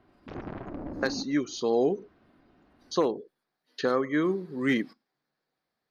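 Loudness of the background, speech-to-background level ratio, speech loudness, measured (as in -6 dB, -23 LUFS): -39.0 LUFS, 10.5 dB, -28.5 LUFS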